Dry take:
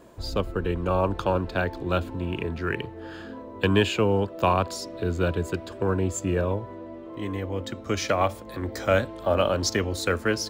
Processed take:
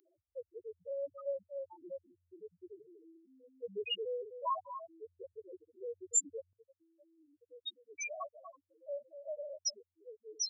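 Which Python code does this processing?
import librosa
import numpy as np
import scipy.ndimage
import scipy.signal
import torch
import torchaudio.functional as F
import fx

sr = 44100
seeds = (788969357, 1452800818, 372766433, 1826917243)

y = fx.echo_feedback(x, sr, ms=245, feedback_pct=24, wet_db=-10.5)
y = fx.spec_topn(y, sr, count=1)
y = np.diff(y, prepend=0.0)
y = fx.highpass(y, sr, hz=fx.steps((0.0, 320.0), (6.53, 770.0)), slope=12)
y = y * 10.0 ** (16.5 / 20.0)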